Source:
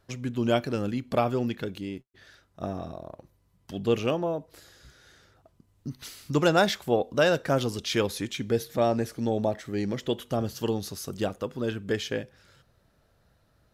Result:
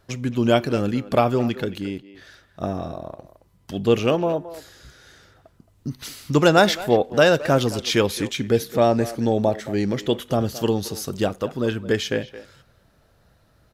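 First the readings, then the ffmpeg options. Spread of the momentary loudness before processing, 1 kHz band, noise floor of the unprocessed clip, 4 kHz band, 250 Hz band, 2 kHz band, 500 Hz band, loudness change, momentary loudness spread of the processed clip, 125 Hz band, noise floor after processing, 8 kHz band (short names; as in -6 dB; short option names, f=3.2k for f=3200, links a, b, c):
15 LU, +6.5 dB, -67 dBFS, +6.5 dB, +6.5 dB, +6.5 dB, +6.5 dB, +6.5 dB, 16 LU, +6.5 dB, -60 dBFS, +6.5 dB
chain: -filter_complex "[0:a]asplit=2[a][b];[b]adelay=220,highpass=300,lowpass=3.4k,asoftclip=type=hard:threshold=-19.5dB,volume=-14dB[c];[a][c]amix=inputs=2:normalize=0,volume=6.5dB"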